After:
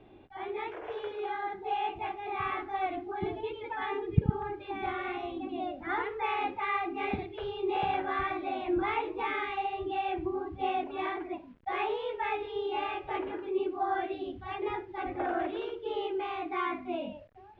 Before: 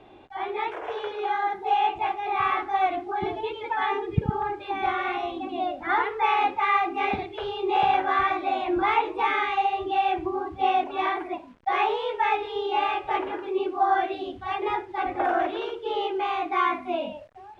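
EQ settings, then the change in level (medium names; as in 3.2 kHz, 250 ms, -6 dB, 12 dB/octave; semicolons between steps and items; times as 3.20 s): distance through air 110 m; peaking EQ 920 Hz -9 dB 2.1 oct; treble shelf 3.9 kHz -11 dB; 0.0 dB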